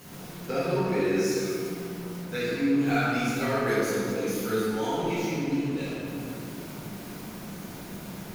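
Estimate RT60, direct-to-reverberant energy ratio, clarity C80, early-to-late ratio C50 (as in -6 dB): 2.6 s, -11.5 dB, -1.0 dB, -4.0 dB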